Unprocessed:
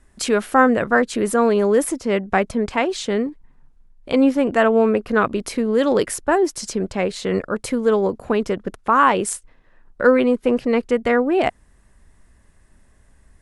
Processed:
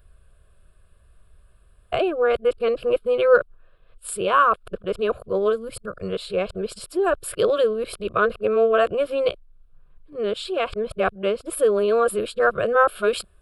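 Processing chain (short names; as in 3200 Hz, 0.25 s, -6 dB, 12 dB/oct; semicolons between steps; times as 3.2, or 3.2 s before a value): whole clip reversed; spectral gain 5.52–6.12, 310–4300 Hz -7 dB; fixed phaser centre 1300 Hz, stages 8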